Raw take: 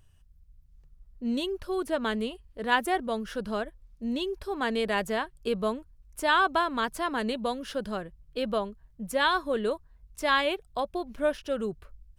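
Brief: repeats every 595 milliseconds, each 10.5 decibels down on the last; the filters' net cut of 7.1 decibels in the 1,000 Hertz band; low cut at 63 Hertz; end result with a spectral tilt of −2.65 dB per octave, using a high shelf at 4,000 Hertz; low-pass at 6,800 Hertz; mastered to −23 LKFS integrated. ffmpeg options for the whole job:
ffmpeg -i in.wav -af "highpass=63,lowpass=6800,equalizer=frequency=1000:width_type=o:gain=-8.5,highshelf=frequency=4000:gain=-8.5,aecho=1:1:595|1190|1785:0.299|0.0896|0.0269,volume=9.5dB" out.wav

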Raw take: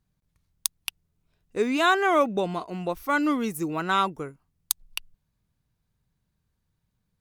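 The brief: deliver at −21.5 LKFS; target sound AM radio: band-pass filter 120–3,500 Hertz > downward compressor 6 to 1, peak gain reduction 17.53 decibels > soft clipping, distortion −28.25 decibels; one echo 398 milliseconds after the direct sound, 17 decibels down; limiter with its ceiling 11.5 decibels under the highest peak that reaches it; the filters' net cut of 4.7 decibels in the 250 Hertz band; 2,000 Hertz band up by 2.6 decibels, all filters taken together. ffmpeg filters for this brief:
ffmpeg -i in.wav -af "equalizer=frequency=250:width_type=o:gain=-6,equalizer=frequency=2000:width_type=o:gain=4.5,alimiter=limit=-13.5dB:level=0:latency=1,highpass=120,lowpass=3500,aecho=1:1:398:0.141,acompressor=threshold=-38dB:ratio=6,asoftclip=threshold=-23dB,volume=21dB" out.wav

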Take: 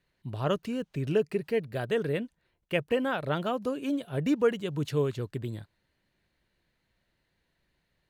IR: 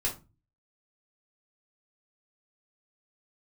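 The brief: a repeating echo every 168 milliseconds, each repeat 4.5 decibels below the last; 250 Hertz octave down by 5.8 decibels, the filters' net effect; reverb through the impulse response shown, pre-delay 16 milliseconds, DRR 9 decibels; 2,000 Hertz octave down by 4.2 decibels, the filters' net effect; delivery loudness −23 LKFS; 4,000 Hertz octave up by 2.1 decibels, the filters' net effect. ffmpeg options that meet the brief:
-filter_complex "[0:a]equalizer=frequency=250:width_type=o:gain=-7.5,equalizer=frequency=2000:width_type=o:gain=-8,equalizer=frequency=4000:width_type=o:gain=7.5,aecho=1:1:168|336|504|672|840|1008|1176|1344|1512:0.596|0.357|0.214|0.129|0.0772|0.0463|0.0278|0.0167|0.01,asplit=2[link_01][link_02];[1:a]atrim=start_sample=2205,adelay=16[link_03];[link_02][link_03]afir=irnorm=-1:irlink=0,volume=-14.5dB[link_04];[link_01][link_04]amix=inputs=2:normalize=0,volume=8dB"

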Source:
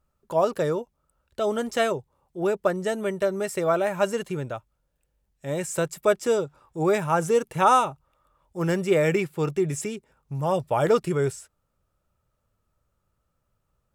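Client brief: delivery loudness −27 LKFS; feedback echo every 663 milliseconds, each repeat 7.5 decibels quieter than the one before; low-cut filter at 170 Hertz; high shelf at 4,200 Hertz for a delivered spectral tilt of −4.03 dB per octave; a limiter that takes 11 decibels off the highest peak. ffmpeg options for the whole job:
ffmpeg -i in.wav -af "highpass=170,highshelf=frequency=4200:gain=9,alimiter=limit=-16.5dB:level=0:latency=1,aecho=1:1:663|1326|1989|2652|3315:0.422|0.177|0.0744|0.0312|0.0131,volume=1dB" out.wav

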